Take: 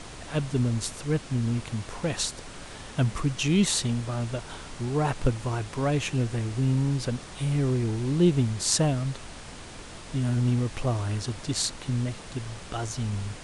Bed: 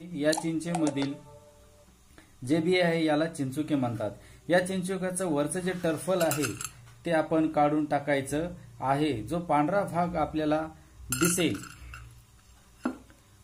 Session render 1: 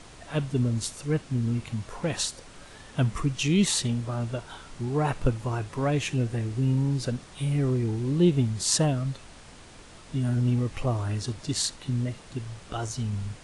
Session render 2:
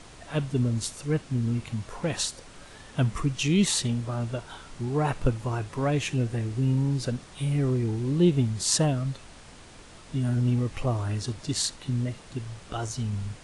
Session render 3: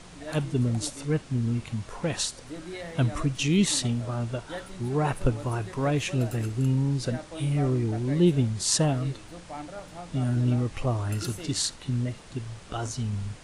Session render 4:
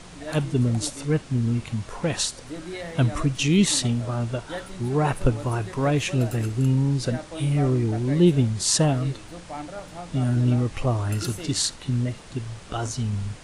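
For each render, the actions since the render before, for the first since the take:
noise print and reduce 6 dB
nothing audible
add bed -14 dB
gain +3.5 dB; limiter -3 dBFS, peak gain reduction 1.5 dB

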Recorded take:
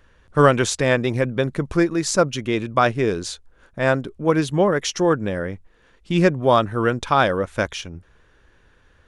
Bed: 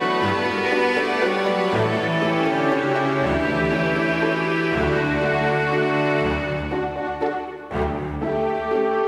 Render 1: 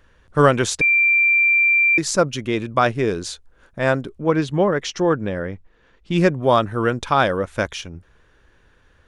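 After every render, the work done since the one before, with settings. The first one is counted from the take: 0.81–1.98 bleep 2360 Hz -12.5 dBFS; 4.21–6.12 air absorption 77 m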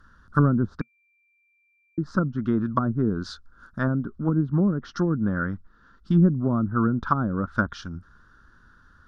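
treble ducked by the level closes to 380 Hz, closed at -14.5 dBFS; EQ curve 130 Hz 0 dB, 230 Hz +5 dB, 480 Hz -12 dB, 840 Hz -7 dB, 1400 Hz +11 dB, 2300 Hz -21 dB, 3500 Hz -6 dB, 5000 Hz +1 dB, 7600 Hz -9 dB, 12000 Hz -4 dB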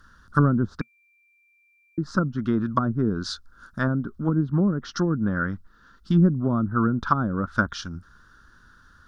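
high shelf 2800 Hz +10 dB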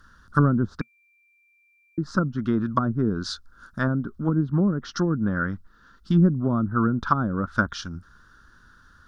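nothing audible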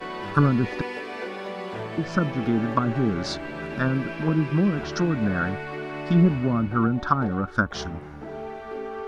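add bed -13 dB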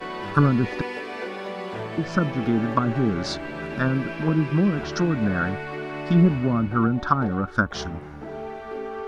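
gain +1 dB

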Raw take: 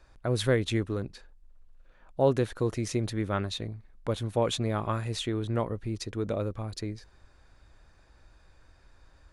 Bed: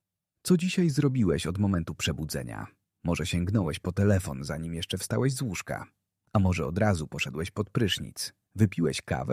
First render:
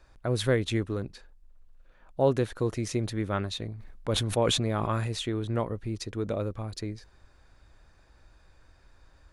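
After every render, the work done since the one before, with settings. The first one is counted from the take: 3.75–5.11 sustainer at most 25 dB/s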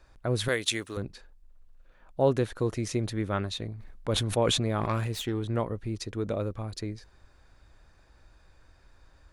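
0.48–0.97 tilt +4 dB/oct; 4.8–5.42 self-modulated delay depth 0.1 ms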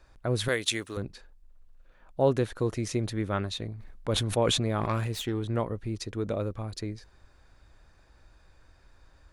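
nothing audible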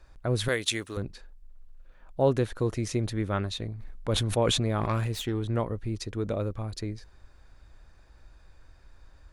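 low shelf 69 Hz +6.5 dB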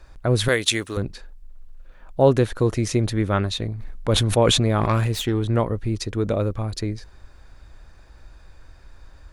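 gain +7.5 dB

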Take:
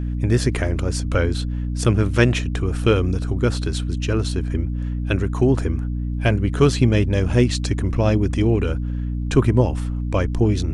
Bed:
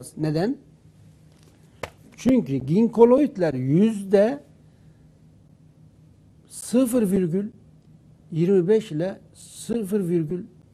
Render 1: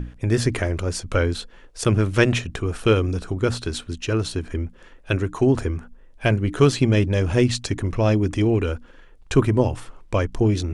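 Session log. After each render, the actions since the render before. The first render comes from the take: notches 60/120/180/240/300 Hz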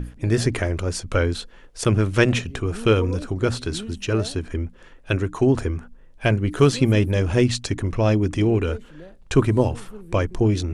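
add bed -17 dB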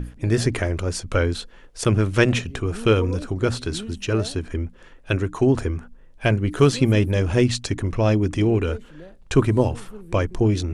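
nothing audible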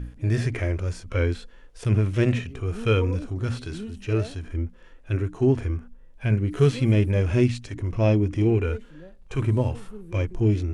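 harmonic-percussive split percussive -17 dB; dynamic EQ 2200 Hz, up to +6 dB, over -49 dBFS, Q 1.8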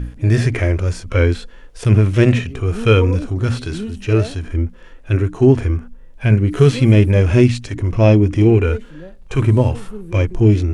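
gain +9 dB; limiter -1 dBFS, peak gain reduction 2.5 dB

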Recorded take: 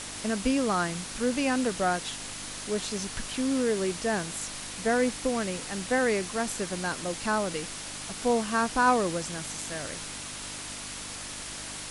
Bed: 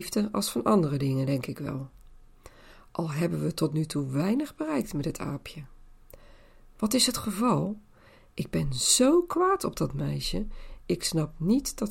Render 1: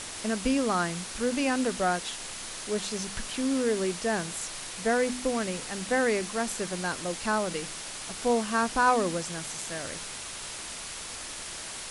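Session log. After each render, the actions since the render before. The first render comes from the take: de-hum 50 Hz, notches 6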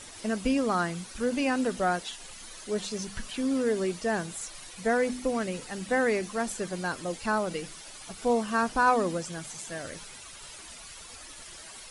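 denoiser 11 dB, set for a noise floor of -39 dBFS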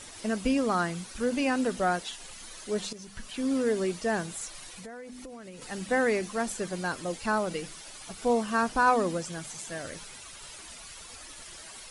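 2.93–3.51 fade in linear, from -13.5 dB; 4.7–5.62 compressor 10:1, threshold -40 dBFS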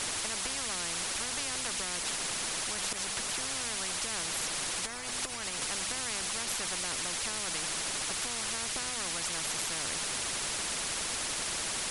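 compressor 2.5:1, threshold -30 dBFS, peak gain reduction 9 dB; spectral compressor 10:1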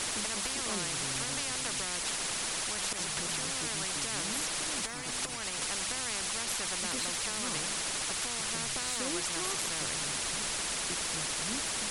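add bed -18.5 dB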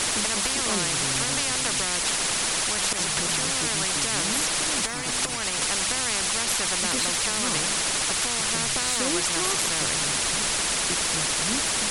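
gain +9 dB

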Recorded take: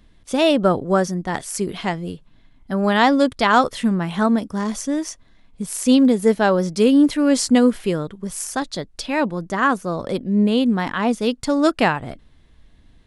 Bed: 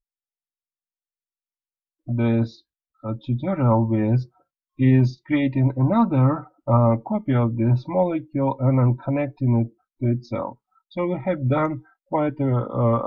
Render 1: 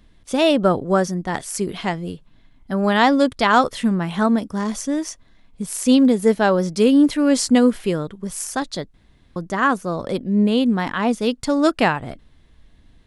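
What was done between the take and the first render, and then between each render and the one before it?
8.94–9.36 room tone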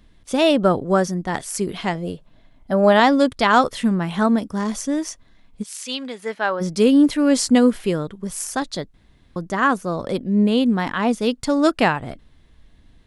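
1.95–3 bell 610 Hz +9.5 dB; 5.62–6.6 band-pass 4600 Hz -> 1300 Hz, Q 0.85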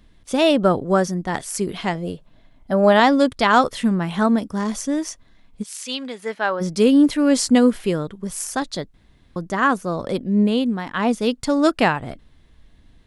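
10.41–10.94 fade out, to -9 dB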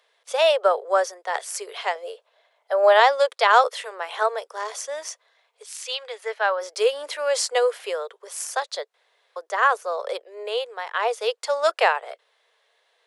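steep high-pass 440 Hz 72 dB/oct; high shelf 9600 Hz -7 dB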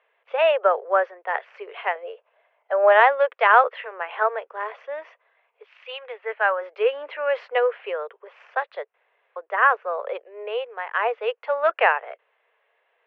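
elliptic low-pass 2700 Hz, stop band 80 dB; dynamic EQ 1700 Hz, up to +4 dB, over -38 dBFS, Q 2.2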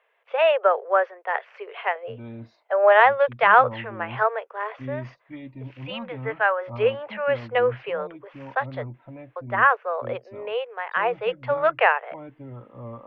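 add bed -18.5 dB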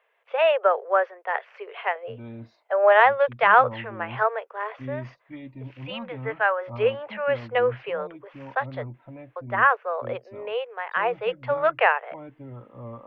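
gain -1 dB

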